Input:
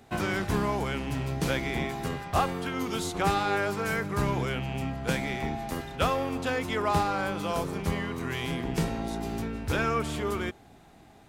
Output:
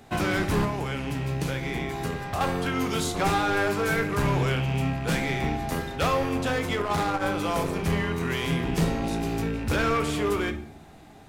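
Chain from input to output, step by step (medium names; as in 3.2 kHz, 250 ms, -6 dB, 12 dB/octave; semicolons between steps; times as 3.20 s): rattle on loud lows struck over -33 dBFS, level -35 dBFS; 0.64–2.41 s: compression 6:1, threshold -31 dBFS, peak gain reduction 11 dB; hard clipper -24.5 dBFS, distortion -12 dB; simulated room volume 98 m³, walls mixed, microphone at 0.35 m; 6.59–7.26 s: transformer saturation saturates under 220 Hz; trim +4 dB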